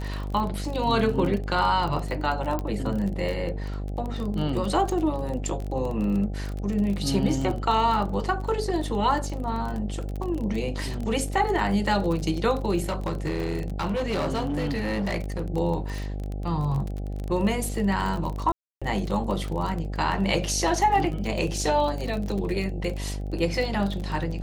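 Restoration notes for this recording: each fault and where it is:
mains buzz 50 Hz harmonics 16 −31 dBFS
surface crackle 29 per second −29 dBFS
0:02.59: click −16 dBFS
0:12.89–0:15.48: clipping −23 dBFS
0:18.52–0:18.82: drop-out 296 ms

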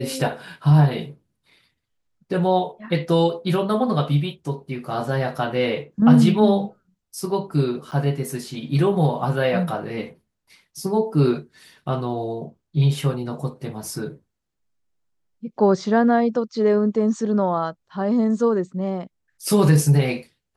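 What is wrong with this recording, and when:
0:07.91–0:07.92: drop-out 8.9 ms

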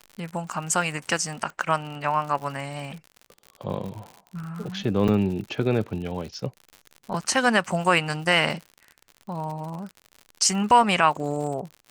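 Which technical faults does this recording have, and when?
surface crackle 75 per second −33 dBFS
0:05.08: drop-out 4.9 ms

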